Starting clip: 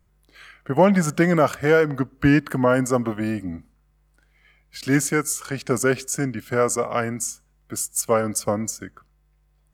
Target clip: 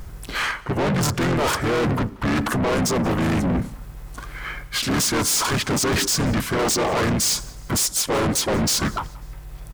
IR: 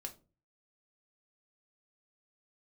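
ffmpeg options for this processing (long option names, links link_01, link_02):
-filter_complex "[0:a]areverse,acompressor=threshold=-30dB:ratio=20,areverse,volume=25dB,asoftclip=hard,volume=-25dB,asplit=4[link_01][link_02][link_03][link_04];[link_02]asetrate=22050,aresample=44100,atempo=2,volume=-15dB[link_05];[link_03]asetrate=29433,aresample=44100,atempo=1.49831,volume=-8dB[link_06];[link_04]asetrate=33038,aresample=44100,atempo=1.33484,volume=-1dB[link_07];[link_01][link_05][link_06][link_07]amix=inputs=4:normalize=0,apsyclip=28.5dB,asoftclip=type=tanh:threshold=-14dB,asplit=2[link_08][link_09];[link_09]asplit=3[link_10][link_11][link_12];[link_10]adelay=181,afreqshift=-46,volume=-23.5dB[link_13];[link_11]adelay=362,afreqshift=-92,volume=-30.8dB[link_14];[link_12]adelay=543,afreqshift=-138,volume=-38.2dB[link_15];[link_13][link_14][link_15]amix=inputs=3:normalize=0[link_16];[link_08][link_16]amix=inputs=2:normalize=0,volume=-5dB"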